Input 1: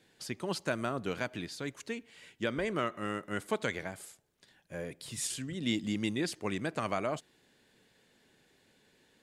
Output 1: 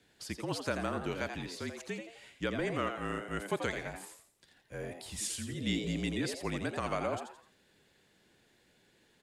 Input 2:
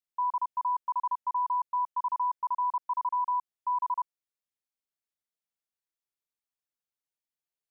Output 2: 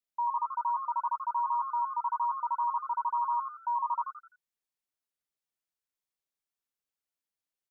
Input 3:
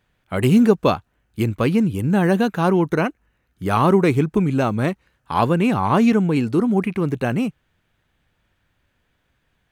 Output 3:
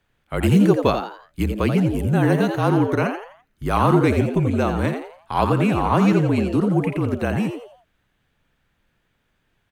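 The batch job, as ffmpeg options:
-filter_complex "[0:a]asplit=5[a][b][c][d][e];[b]adelay=85,afreqshift=130,volume=-7.5dB[f];[c]adelay=170,afreqshift=260,volume=-16.1dB[g];[d]adelay=255,afreqshift=390,volume=-24.8dB[h];[e]adelay=340,afreqshift=520,volume=-33.4dB[i];[a][f][g][h][i]amix=inputs=5:normalize=0,afreqshift=-38,volume=-1.5dB"

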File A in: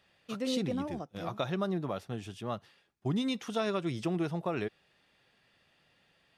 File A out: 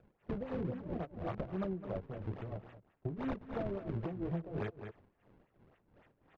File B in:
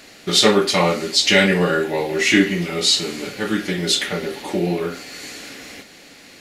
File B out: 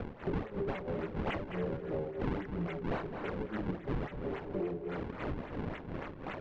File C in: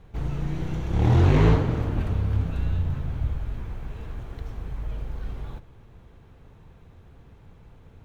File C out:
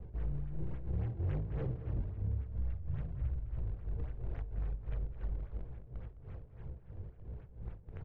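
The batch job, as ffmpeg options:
-filter_complex "[0:a]flanger=delay=15.5:depth=5:speed=1.2,asplit=2[a][b];[b]acrusher=bits=6:mix=0:aa=0.000001,volume=-5.5dB[c];[a][c]amix=inputs=2:normalize=0,aeval=exprs='0.631*(cos(1*acos(clip(val(0)/0.631,-1,1)))-cos(1*PI/2))+0.126*(cos(5*acos(clip(val(0)/0.631,-1,1)))-cos(5*PI/2))':c=same,tremolo=f=3:d=0.85,equalizer=f=250:t=o:w=1:g=-9,equalizer=f=1k:t=o:w=1:g=-10,equalizer=f=2k:t=o:w=1:g=3,acrossover=split=310|800[d][e][f];[f]acrusher=samples=41:mix=1:aa=0.000001:lfo=1:lforange=65.6:lforate=3.6[g];[d][e][g]amix=inputs=3:normalize=0,asplit=2[h][i];[i]adelay=209.9,volume=-15dB,highshelf=f=4k:g=-4.72[j];[h][j]amix=inputs=2:normalize=0,acompressor=threshold=-39dB:ratio=6,lowpass=3k,aemphasis=mode=reproduction:type=75fm,volume=3.5dB"

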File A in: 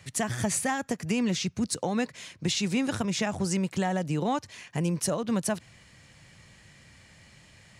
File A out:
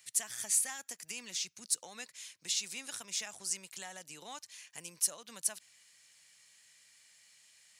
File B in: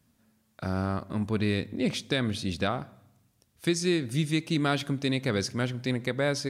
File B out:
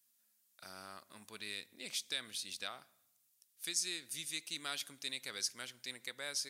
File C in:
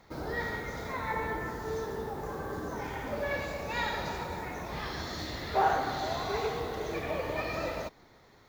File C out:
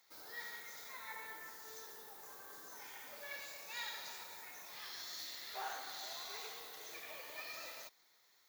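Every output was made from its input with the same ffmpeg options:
-af "aderivative"

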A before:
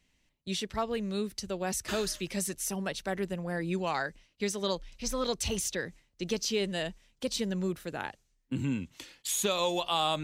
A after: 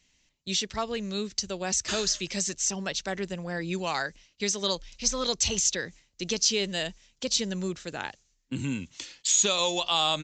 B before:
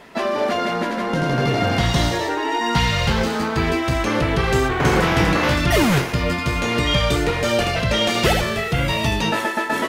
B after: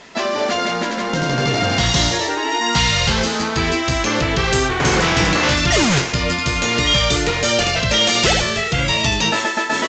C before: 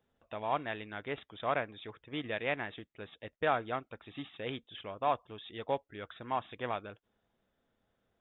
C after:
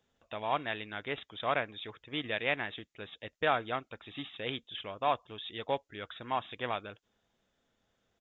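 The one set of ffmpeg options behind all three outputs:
-af "crystalizer=i=3.5:c=0,aresample=16000,volume=9.5dB,asoftclip=hard,volume=-9.5dB,aresample=44100"

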